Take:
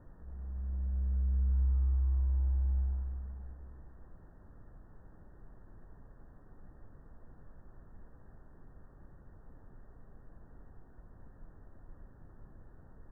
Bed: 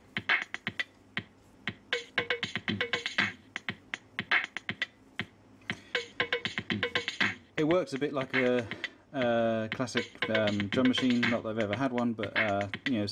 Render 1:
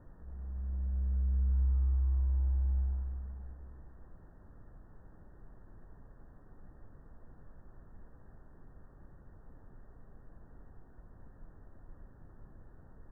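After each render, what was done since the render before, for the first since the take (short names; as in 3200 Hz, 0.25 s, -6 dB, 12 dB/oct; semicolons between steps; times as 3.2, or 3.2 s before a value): nothing audible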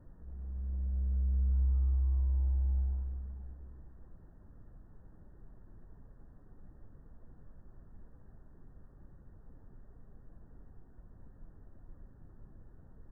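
denoiser 6 dB, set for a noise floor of -57 dBFS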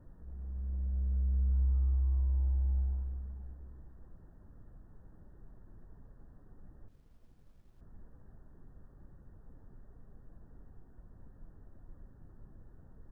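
6.88–7.81 G.711 law mismatch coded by A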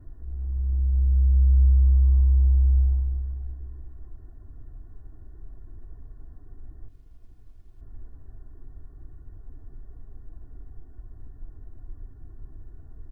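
tone controls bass +8 dB, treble +1 dB; comb 2.8 ms, depth 84%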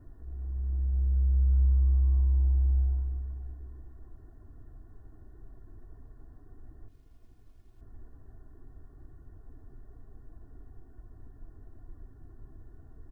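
low shelf 100 Hz -8.5 dB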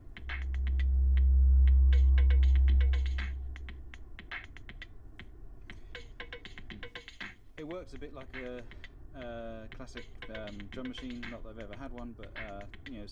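add bed -15 dB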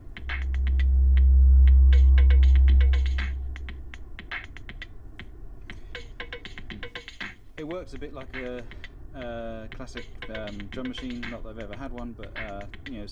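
gain +7 dB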